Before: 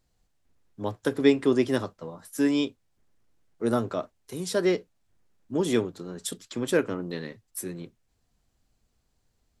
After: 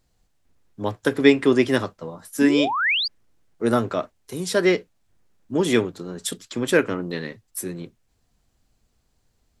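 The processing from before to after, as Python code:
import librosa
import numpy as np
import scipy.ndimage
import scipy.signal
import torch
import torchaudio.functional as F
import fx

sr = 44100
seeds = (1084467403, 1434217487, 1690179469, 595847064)

y = fx.spec_paint(x, sr, seeds[0], shape='rise', start_s=2.41, length_s=0.67, low_hz=220.0, high_hz=5000.0, level_db=-30.0)
y = fx.dynamic_eq(y, sr, hz=2100.0, q=1.1, threshold_db=-44.0, ratio=4.0, max_db=6)
y = F.gain(torch.from_numpy(y), 4.5).numpy()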